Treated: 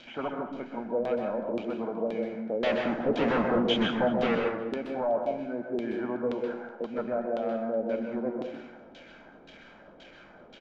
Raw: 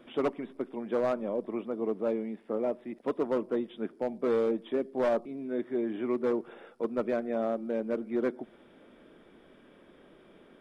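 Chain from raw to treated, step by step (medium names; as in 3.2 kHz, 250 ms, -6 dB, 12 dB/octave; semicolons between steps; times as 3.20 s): zero-crossing glitches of -38 dBFS; comb 1.3 ms, depth 52%; peak limiter -26 dBFS, peak gain reduction 8.5 dB; 2.63–4.35 s: waveshaping leveller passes 5; resampled via 16 kHz; LFO low-pass saw down 1.9 Hz 380–3500 Hz; echo from a far wall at 64 m, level -19 dB; plate-style reverb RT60 0.64 s, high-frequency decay 0.6×, pre-delay 115 ms, DRR 2.5 dB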